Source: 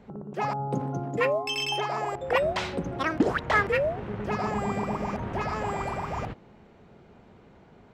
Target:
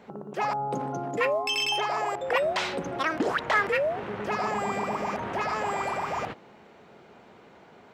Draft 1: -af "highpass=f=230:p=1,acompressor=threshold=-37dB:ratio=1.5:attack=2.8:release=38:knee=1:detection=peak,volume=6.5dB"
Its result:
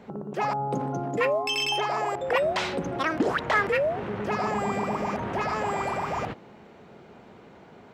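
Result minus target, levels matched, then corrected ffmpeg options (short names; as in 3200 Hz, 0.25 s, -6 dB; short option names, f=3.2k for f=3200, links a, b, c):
250 Hz band +3.0 dB
-af "highpass=f=540:p=1,acompressor=threshold=-37dB:ratio=1.5:attack=2.8:release=38:knee=1:detection=peak,volume=6.5dB"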